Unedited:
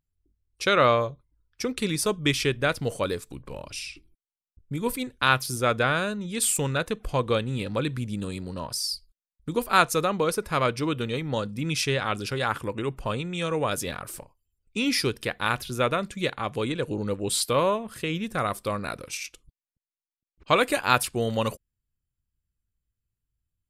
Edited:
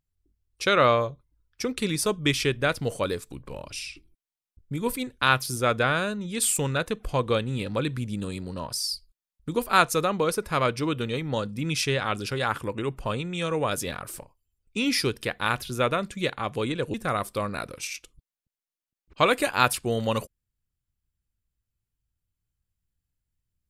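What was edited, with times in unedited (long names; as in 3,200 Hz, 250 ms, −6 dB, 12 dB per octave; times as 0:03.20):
0:16.94–0:18.24: remove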